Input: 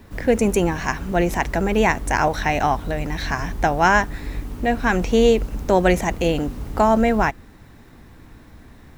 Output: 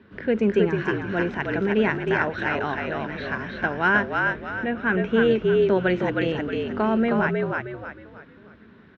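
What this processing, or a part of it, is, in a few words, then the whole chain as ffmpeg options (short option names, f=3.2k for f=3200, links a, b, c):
frequency-shifting delay pedal into a guitar cabinet: -filter_complex "[0:a]asettb=1/sr,asplit=3[a][b][c];[a]atrim=end=4.254[d];[b]atrim=start=4.25:end=5.31,asetpts=PTS-STARTPTS,afade=t=in:d=0.004:c=qsin,afade=t=out:st=1.056:d=0.004:c=qsin,equalizer=f=4.7k:t=o:w=0.4:g=-14.5[e];[c]atrim=start=5.306[f];[d][e]acrossfade=d=0.004:c1=hsin:c2=qsin[g];[g][f]acrossfade=d=0.004:c1=qsin:c2=hsin,asplit=6[h][i][j][k][l][m];[i]adelay=313,afreqshift=-50,volume=-3dB[n];[j]adelay=626,afreqshift=-100,volume=-11.4dB[o];[k]adelay=939,afreqshift=-150,volume=-19.8dB[p];[l]adelay=1252,afreqshift=-200,volume=-28.2dB[q];[m]adelay=1565,afreqshift=-250,volume=-36.6dB[r];[h][n][o][p][q][r]amix=inputs=6:normalize=0,highpass=110,equalizer=f=210:t=q:w=4:g=7,equalizer=f=400:t=q:w=4:g=8,equalizer=f=770:t=q:w=4:g=-6,equalizer=f=1.5k:t=q:w=4:g=9,equalizer=f=3k:t=q:w=4:g=4,lowpass=f=3.8k:w=0.5412,lowpass=f=3.8k:w=1.3066,volume=-8dB"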